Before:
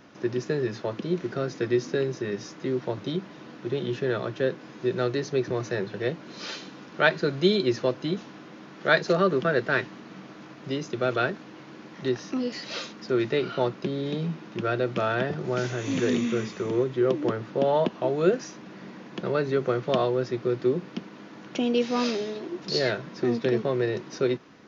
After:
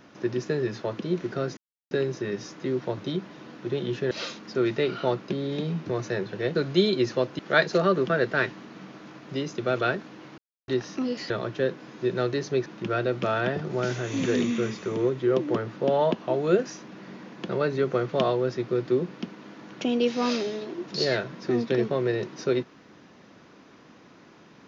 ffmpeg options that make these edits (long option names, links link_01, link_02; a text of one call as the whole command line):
ffmpeg -i in.wav -filter_complex "[0:a]asplit=11[link_01][link_02][link_03][link_04][link_05][link_06][link_07][link_08][link_09][link_10][link_11];[link_01]atrim=end=1.57,asetpts=PTS-STARTPTS,afade=type=out:start_time=1.566:duration=0.004:curve=hsin[link_12];[link_02]atrim=start=1.57:end=1.91,asetpts=PTS-STARTPTS,volume=0[link_13];[link_03]atrim=start=1.91:end=4.112,asetpts=PTS-STARTPTS,afade=type=in:duration=0.004:curve=hsin[link_14];[link_04]atrim=start=12.648:end=14.402[link_15];[link_05]atrim=start=5.468:end=6.162[link_16];[link_06]atrim=start=7.218:end=8.062[link_17];[link_07]atrim=start=8.738:end=11.73,asetpts=PTS-STARTPTS,afade=type=out:start_time=2.988:duration=0.004:curve=hsin[link_18];[link_08]atrim=start=11.73:end=12.03,asetpts=PTS-STARTPTS,volume=0[link_19];[link_09]atrim=start=12.03:end=12.652,asetpts=PTS-STARTPTS,afade=type=in:duration=0.004:curve=hsin[link_20];[link_10]atrim=start=4.108:end=5.472[link_21];[link_11]atrim=start=14.398[link_22];[link_12][link_13][link_14]concat=n=3:v=0:a=1[link_23];[link_23][link_15]acrossfade=duration=0.004:curve1=hsin:curve2=hsin[link_24];[link_24][link_16]acrossfade=duration=0.004:curve1=hsin:curve2=hsin[link_25];[link_25][link_17]acrossfade=duration=0.004:curve1=hsin:curve2=hsin[link_26];[link_18][link_19][link_20]concat=n=3:v=0:a=1[link_27];[link_26][link_27]acrossfade=duration=0.004:curve1=hsin:curve2=hsin[link_28];[link_28][link_21]acrossfade=duration=0.004:curve1=hsin:curve2=hsin[link_29];[link_29][link_22]acrossfade=duration=0.004:curve1=hsin:curve2=hsin" out.wav